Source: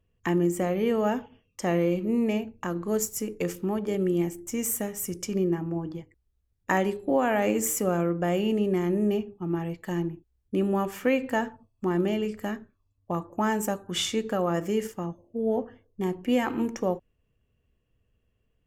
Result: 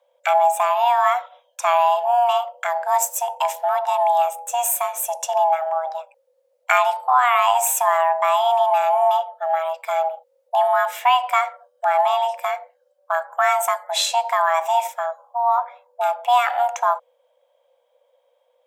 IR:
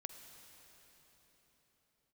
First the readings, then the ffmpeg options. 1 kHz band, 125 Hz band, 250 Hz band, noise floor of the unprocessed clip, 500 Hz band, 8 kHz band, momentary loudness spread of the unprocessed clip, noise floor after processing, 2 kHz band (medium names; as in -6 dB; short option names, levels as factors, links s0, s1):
+18.0 dB, under -40 dB, under -40 dB, -74 dBFS, +5.5 dB, +7.5 dB, 9 LU, -66 dBFS, +9.5 dB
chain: -af "afreqshift=480,volume=2.37"